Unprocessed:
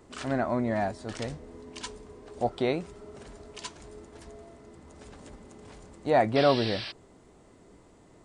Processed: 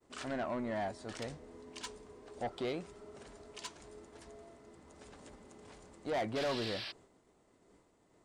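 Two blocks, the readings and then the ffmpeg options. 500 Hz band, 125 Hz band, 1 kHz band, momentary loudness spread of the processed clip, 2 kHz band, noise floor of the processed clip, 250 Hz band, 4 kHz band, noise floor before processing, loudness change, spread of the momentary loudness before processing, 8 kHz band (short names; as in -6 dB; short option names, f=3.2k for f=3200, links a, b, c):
-10.5 dB, -12.5 dB, -11.0 dB, 20 LU, -8.0 dB, -70 dBFS, -10.5 dB, -7.0 dB, -57 dBFS, -11.0 dB, 24 LU, -5.0 dB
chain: -af "agate=range=-33dB:threshold=-50dB:ratio=3:detection=peak,lowshelf=f=200:g=-7,asoftclip=type=tanh:threshold=-26.5dB,volume=-4.5dB"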